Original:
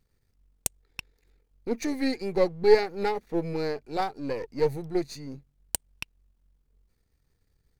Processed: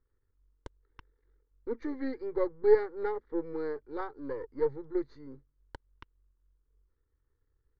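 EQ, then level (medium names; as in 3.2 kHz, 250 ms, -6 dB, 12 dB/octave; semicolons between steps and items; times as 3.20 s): low-pass 2.9 kHz 24 dB/octave; static phaser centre 690 Hz, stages 6; -3.5 dB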